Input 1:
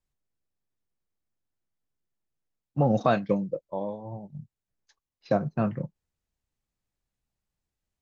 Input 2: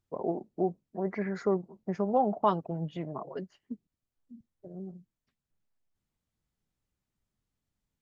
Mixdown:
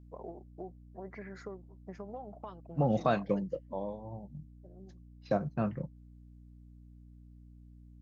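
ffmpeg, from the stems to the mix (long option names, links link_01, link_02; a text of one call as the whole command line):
ffmpeg -i stem1.wav -i stem2.wav -filter_complex "[0:a]aeval=exprs='val(0)+0.00447*(sin(2*PI*60*n/s)+sin(2*PI*2*60*n/s)/2+sin(2*PI*3*60*n/s)/3+sin(2*PI*4*60*n/s)/4+sin(2*PI*5*60*n/s)/5)':channel_layout=same,volume=-5.5dB[link_01];[1:a]equalizer=frequency=230:width_type=o:width=2:gain=-6,acompressor=threshold=-32dB:ratio=10,adynamicequalizer=threshold=0.002:dfrequency=850:dqfactor=1.8:tfrequency=850:tqfactor=1.8:attack=5:release=100:ratio=0.375:range=2.5:mode=cutabove:tftype=bell,volume=-7dB[link_02];[link_01][link_02]amix=inputs=2:normalize=0" out.wav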